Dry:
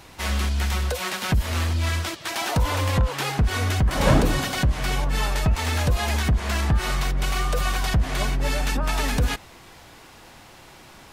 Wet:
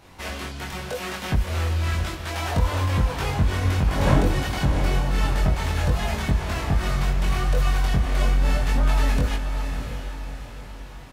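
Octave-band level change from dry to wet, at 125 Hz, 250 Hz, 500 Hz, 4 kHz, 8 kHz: +0.5 dB, 0.0 dB, -0.5 dB, -4.0 dB, -5.5 dB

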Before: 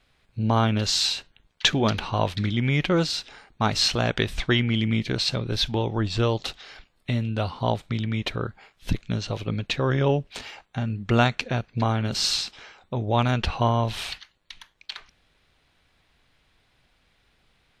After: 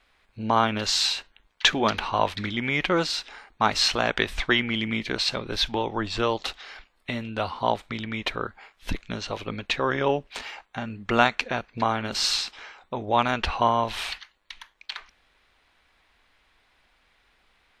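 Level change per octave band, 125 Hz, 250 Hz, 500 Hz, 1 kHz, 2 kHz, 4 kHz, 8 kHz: -11.0 dB, -3.5 dB, -0.5 dB, +3.5 dB, +3.0 dB, 0.0 dB, -0.5 dB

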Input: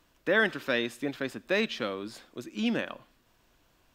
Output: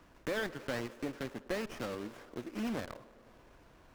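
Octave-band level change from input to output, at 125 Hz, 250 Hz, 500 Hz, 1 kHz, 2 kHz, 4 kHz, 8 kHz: -3.0 dB, -7.0 dB, -8.0 dB, -6.0 dB, -12.5 dB, -11.0 dB, -2.5 dB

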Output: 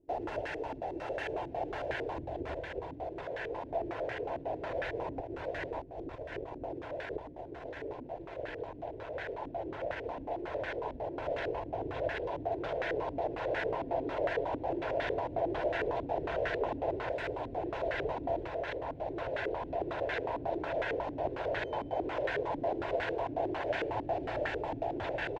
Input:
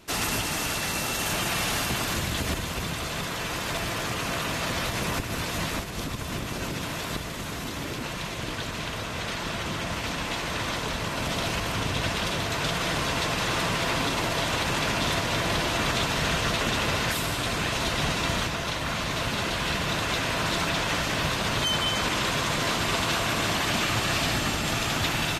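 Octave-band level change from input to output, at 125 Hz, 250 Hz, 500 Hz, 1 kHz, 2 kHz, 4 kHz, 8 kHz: -15.5 dB, -9.5 dB, -0.5 dB, -7.5 dB, -12.0 dB, -23.5 dB, under -35 dB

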